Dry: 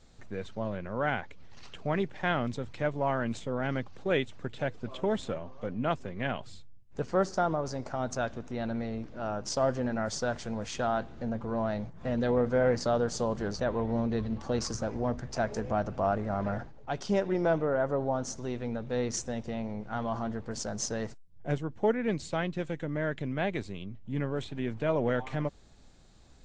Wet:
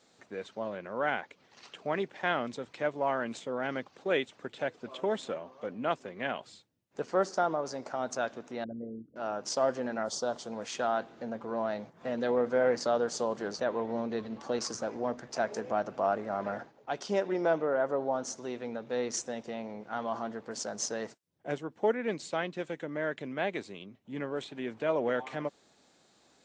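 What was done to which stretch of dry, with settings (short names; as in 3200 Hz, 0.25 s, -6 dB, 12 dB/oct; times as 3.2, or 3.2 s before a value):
8.64–9.16 formant sharpening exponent 3
10.03–10.52 band shelf 2000 Hz -11 dB 1 oct
whole clip: HPF 290 Hz 12 dB/oct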